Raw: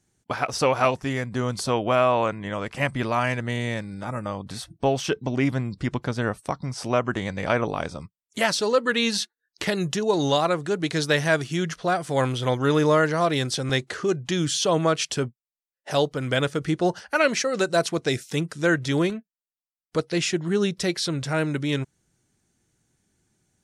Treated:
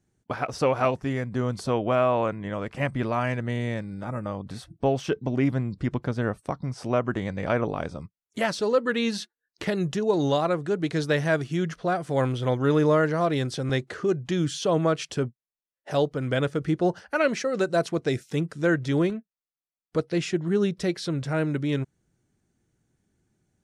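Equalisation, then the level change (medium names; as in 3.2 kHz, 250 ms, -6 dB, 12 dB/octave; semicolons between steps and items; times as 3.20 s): peaking EQ 910 Hz -2.5 dB; treble shelf 2.1 kHz -10.5 dB; 0.0 dB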